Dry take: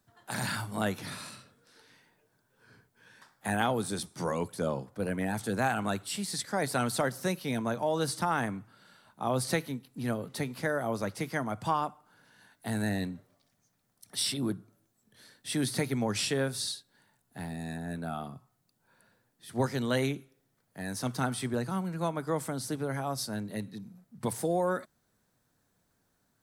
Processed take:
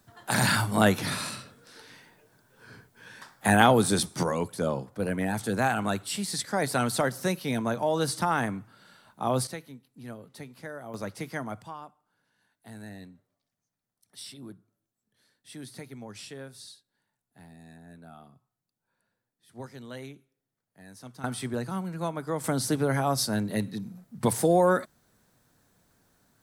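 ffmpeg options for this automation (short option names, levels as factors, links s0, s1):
-af "asetnsamples=n=441:p=0,asendcmd='4.23 volume volume 3dB;9.47 volume volume -9.5dB;10.94 volume volume -2dB;11.62 volume volume -12.5dB;21.24 volume volume 0dB;22.44 volume volume 7.5dB',volume=2.99"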